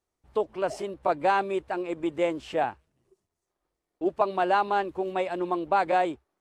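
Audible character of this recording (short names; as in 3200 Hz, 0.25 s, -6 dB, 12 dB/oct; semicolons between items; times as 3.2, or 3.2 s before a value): noise floor -85 dBFS; spectral tilt -3.5 dB/oct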